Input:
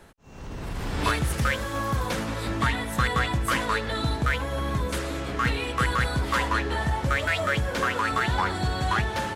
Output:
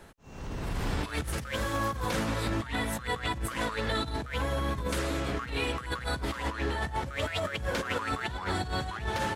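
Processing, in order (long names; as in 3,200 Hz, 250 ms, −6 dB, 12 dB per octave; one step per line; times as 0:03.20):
compressor whose output falls as the input rises −28 dBFS, ratio −0.5
level −3 dB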